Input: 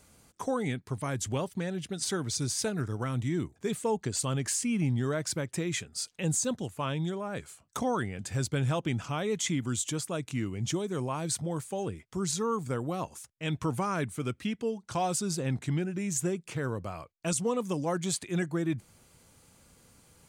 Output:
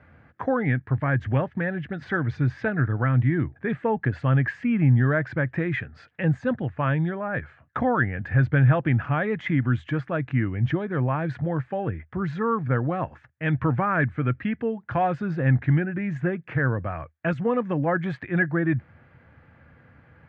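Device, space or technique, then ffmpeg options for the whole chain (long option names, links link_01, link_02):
bass cabinet: -af "highpass=77,equalizer=frequency=79:width_type=q:width=4:gain=8,equalizer=frequency=130:width_type=q:width=4:gain=5,equalizer=frequency=190:width_type=q:width=4:gain=-4,equalizer=frequency=400:width_type=q:width=4:gain=-7,equalizer=frequency=1000:width_type=q:width=4:gain=-4,equalizer=frequency=1700:width_type=q:width=4:gain=10,lowpass=frequency=2100:width=0.5412,lowpass=frequency=2100:width=1.3066,volume=8dB"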